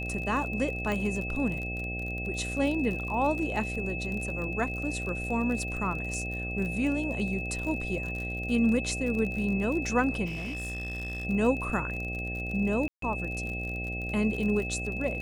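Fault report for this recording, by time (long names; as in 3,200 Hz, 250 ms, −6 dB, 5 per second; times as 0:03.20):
mains buzz 60 Hz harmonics 13 −36 dBFS
surface crackle 44 per second −34 dBFS
whistle 2,600 Hz −35 dBFS
0:00.92: click −19 dBFS
0:10.25–0:11.25: clipping −31.5 dBFS
0:12.88–0:13.02: drop-out 143 ms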